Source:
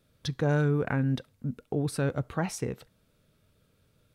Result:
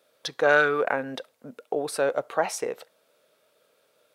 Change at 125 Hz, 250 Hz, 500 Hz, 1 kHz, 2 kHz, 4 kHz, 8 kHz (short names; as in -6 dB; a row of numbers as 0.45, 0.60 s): -18.5, -6.5, +7.5, +10.0, +12.5, +6.0, +5.0 dB